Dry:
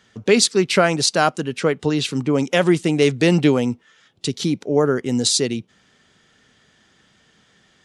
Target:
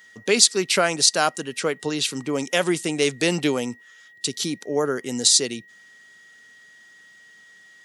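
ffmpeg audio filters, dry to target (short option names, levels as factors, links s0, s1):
-filter_complex "[0:a]acrossover=split=9300[s0][s1];[s1]acompressor=threshold=0.00891:ratio=4:attack=1:release=60[s2];[s0][s2]amix=inputs=2:normalize=0,aeval=exprs='val(0)+0.00501*sin(2*PI*1900*n/s)':c=same,aemphasis=mode=production:type=bsi,volume=0.668"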